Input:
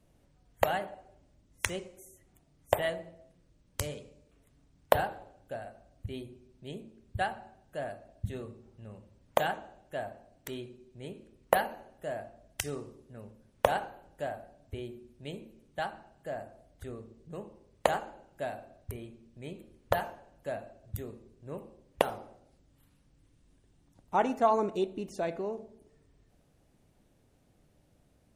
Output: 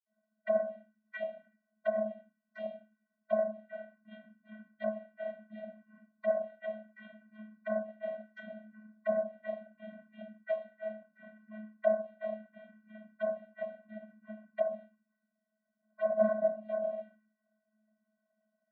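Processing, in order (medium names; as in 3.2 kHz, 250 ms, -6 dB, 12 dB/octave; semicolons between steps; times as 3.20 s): cycle switcher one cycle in 3, inverted; gate -57 dBFS, range -7 dB; time stretch by phase-locked vocoder 0.66×; reverberation RT60 0.40 s, pre-delay 46 ms; low-pass that closes with the level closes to 1.1 kHz, closed at -34 dBFS; treble shelf 3.1 kHz -9 dB; static phaser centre 1.6 kHz, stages 8; in parallel at -6.5 dB: saturation -40 dBFS, distortion -9 dB; on the sum: touch-sensitive phaser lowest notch 480 Hz, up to 2.6 kHz, full sweep at -35.5 dBFS; high-order bell 1.4 kHz +13 dB 2.9 oct; vocoder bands 32, square 215 Hz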